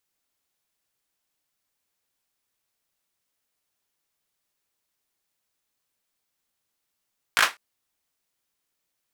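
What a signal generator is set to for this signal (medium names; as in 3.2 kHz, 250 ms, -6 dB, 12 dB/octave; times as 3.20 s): hand clap length 0.20 s, apart 18 ms, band 1.5 kHz, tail 0.20 s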